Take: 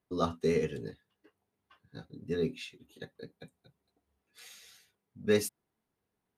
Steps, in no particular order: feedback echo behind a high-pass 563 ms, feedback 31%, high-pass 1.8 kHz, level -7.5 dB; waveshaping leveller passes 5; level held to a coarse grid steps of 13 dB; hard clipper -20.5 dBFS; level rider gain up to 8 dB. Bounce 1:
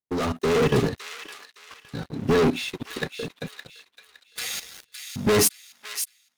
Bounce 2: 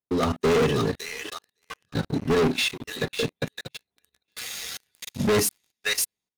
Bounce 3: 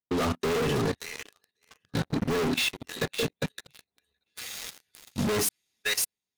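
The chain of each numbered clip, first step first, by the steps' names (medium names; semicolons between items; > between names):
hard clipper > waveshaping leveller > level held to a coarse grid > feedback echo behind a high-pass > level rider; feedback echo behind a high-pass > hard clipper > level rider > level held to a coarse grid > waveshaping leveller; level rider > feedback echo behind a high-pass > waveshaping leveller > hard clipper > level held to a coarse grid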